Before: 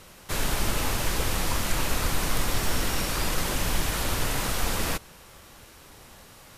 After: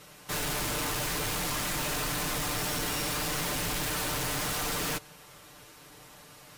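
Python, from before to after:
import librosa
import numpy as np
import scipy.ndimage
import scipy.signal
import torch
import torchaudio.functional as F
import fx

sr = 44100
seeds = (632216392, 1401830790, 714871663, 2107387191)

y = fx.highpass(x, sr, hz=88.0, slope=6)
y = y + 0.78 * np.pad(y, (int(6.7 * sr / 1000.0), 0))[:len(y)]
y = np.clip(10.0 ** (33.0 / 20.0) * y, -1.0, 1.0) / 10.0 ** (33.0 / 20.0)
y = fx.upward_expand(y, sr, threshold_db=-47.0, expansion=1.5)
y = F.gain(torch.from_numpy(y), 3.0).numpy()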